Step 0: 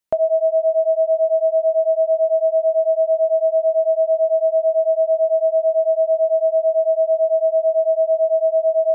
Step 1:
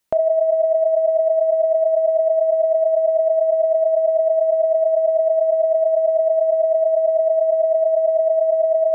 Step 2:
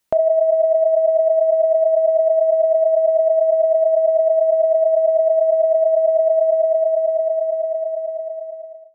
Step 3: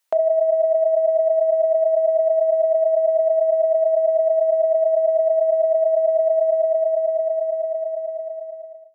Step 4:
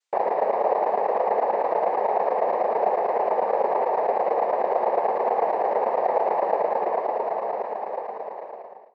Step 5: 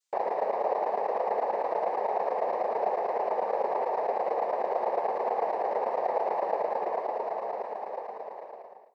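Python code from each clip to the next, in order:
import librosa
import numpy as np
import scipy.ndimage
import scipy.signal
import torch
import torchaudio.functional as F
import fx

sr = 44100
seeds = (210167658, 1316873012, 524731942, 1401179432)

y1 = fx.over_compress(x, sr, threshold_db=-21.0, ratio=-1.0)
y1 = F.gain(torch.from_numpy(y1), 4.5).numpy()
y2 = fx.fade_out_tail(y1, sr, length_s=2.51)
y2 = F.gain(torch.from_numpy(y2), 1.5).numpy()
y3 = scipy.signal.sosfilt(scipy.signal.butter(2, 590.0, 'highpass', fs=sr, output='sos'), y2)
y4 = fx.noise_vocoder(y3, sr, seeds[0], bands=6)
y4 = F.gain(torch.from_numpy(y4), -5.0).numpy()
y5 = fx.bass_treble(y4, sr, bass_db=-2, treble_db=9)
y5 = F.gain(torch.from_numpy(y5), -6.0).numpy()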